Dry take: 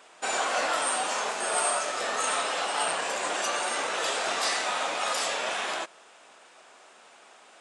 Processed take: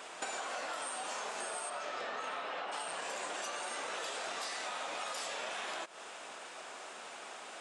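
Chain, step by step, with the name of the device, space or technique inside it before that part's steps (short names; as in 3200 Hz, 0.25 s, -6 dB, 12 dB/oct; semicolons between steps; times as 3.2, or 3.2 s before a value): 1.69–2.71 LPF 4900 Hz -> 2500 Hz 12 dB/oct; serial compression, peaks first (compressor 4:1, threshold -38 dBFS, peak gain reduction 13.5 dB; compressor 3:1, threshold -45 dBFS, peak gain reduction 8.5 dB); gain +6 dB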